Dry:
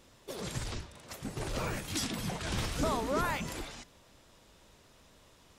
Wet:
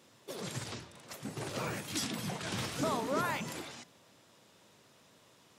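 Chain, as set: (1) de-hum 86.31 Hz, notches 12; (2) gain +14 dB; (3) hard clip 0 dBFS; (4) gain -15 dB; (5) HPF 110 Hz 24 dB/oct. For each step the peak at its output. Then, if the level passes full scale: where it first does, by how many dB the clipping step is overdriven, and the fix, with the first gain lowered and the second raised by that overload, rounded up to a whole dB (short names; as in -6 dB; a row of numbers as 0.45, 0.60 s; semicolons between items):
-19.5, -5.5, -5.5, -20.5, -18.5 dBFS; no overload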